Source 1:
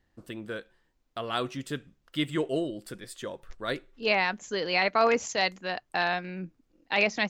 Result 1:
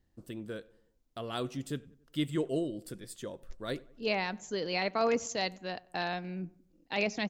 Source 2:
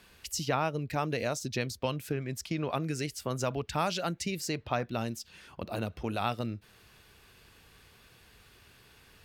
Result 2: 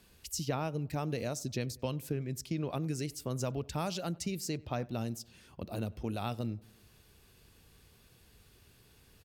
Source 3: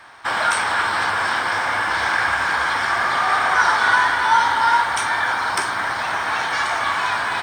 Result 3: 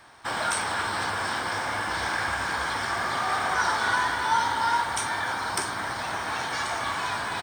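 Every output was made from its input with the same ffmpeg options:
-filter_complex "[0:a]equalizer=f=1600:t=o:w=3:g=-9.5,asplit=2[s0][s1];[s1]adelay=94,lowpass=f=1900:p=1,volume=0.075,asplit=2[s2][s3];[s3]adelay=94,lowpass=f=1900:p=1,volume=0.53,asplit=2[s4][s5];[s5]adelay=94,lowpass=f=1900:p=1,volume=0.53,asplit=2[s6][s7];[s7]adelay=94,lowpass=f=1900:p=1,volume=0.53[s8];[s2][s4][s6][s8]amix=inputs=4:normalize=0[s9];[s0][s9]amix=inputs=2:normalize=0"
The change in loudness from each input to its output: -6.0 LU, -3.5 LU, -8.0 LU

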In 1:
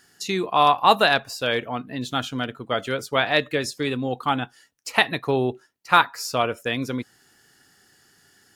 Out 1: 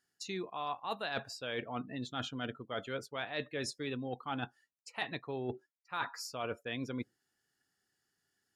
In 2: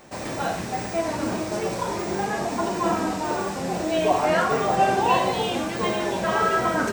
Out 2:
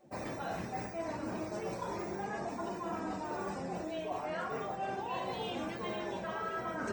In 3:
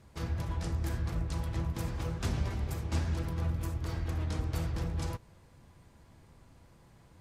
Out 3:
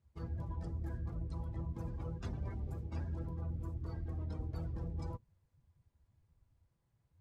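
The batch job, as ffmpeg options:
-af "afftdn=nr=19:nf=-41,areverse,acompressor=threshold=0.0316:ratio=8,areverse,volume=0.562"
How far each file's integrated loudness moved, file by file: -17.0 LU, -14.5 LU, -7.0 LU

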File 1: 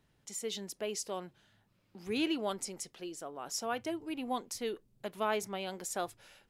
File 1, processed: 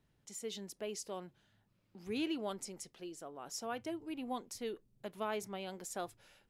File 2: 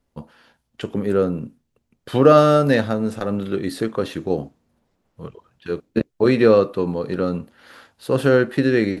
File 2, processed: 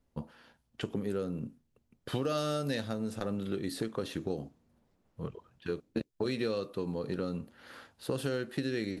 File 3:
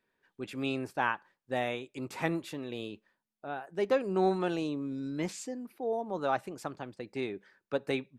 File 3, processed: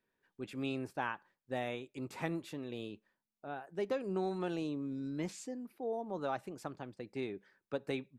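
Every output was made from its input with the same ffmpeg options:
-filter_complex "[0:a]lowshelf=f=410:g=4,acrossover=split=3100[s0][s1];[s0]acompressor=threshold=0.0562:ratio=6[s2];[s2][s1]amix=inputs=2:normalize=0,volume=0.501"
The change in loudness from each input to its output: -5.0 LU, -17.0 LU, -6.0 LU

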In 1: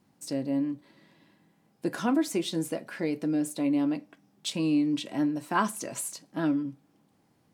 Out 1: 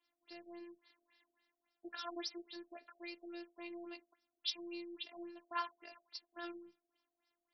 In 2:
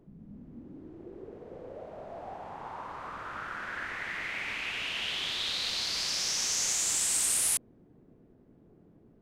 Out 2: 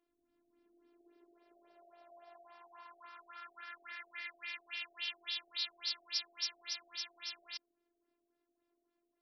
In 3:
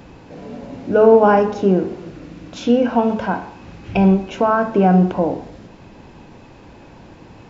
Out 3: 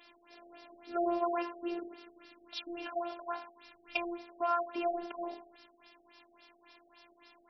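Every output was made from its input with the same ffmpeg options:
-af "aderivative,afftfilt=real='hypot(re,im)*cos(PI*b)':imag='0':win_size=512:overlap=0.75,afftfilt=real='re*lt(b*sr/1024,760*pow(5900/760,0.5+0.5*sin(2*PI*3.6*pts/sr)))':imag='im*lt(b*sr/1024,760*pow(5900/760,0.5+0.5*sin(2*PI*3.6*pts/sr)))':win_size=1024:overlap=0.75,volume=2.11"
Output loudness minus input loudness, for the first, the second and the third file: -17.0 LU, -12.0 LU, -20.5 LU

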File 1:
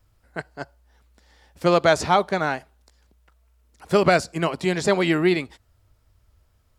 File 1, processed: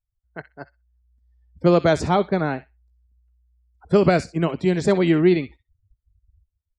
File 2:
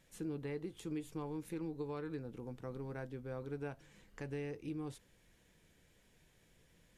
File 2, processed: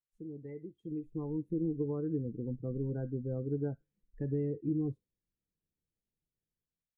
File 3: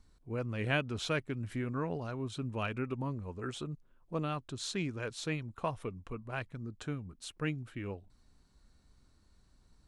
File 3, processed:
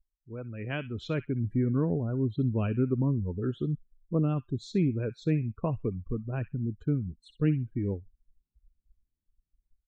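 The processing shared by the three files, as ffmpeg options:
-filter_complex "[0:a]afftdn=nr=33:nf=-41,acrossover=split=460|1600[s0][s1][s2];[s0]dynaudnorm=f=800:g=3:m=5.96[s3];[s2]asplit=2[s4][s5];[s5]adelay=63,lowpass=f=3600:p=1,volume=0.398,asplit=2[s6][s7];[s7]adelay=63,lowpass=f=3600:p=1,volume=0.16,asplit=2[s8][s9];[s9]adelay=63,lowpass=f=3600:p=1,volume=0.16[s10];[s4][s6][s8][s10]amix=inputs=4:normalize=0[s11];[s3][s1][s11]amix=inputs=3:normalize=0,volume=0.596"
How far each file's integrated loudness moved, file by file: +1.5 LU, +7.0 LU, +7.0 LU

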